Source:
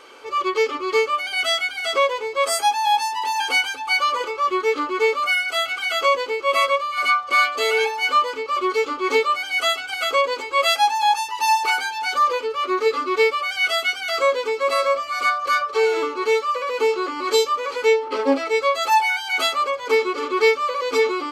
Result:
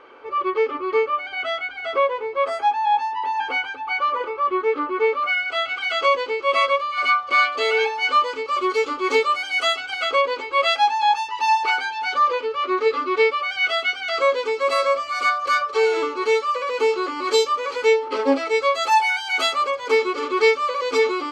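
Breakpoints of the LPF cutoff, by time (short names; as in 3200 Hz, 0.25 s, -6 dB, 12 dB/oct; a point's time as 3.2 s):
4.96 s 1900 Hz
6.01 s 4700 Hz
7.97 s 4700 Hz
8.55 s 9500 Hz
9.24 s 9500 Hz
10.26 s 4000 Hz
14.01 s 4000 Hz
14.63 s 8400 Hz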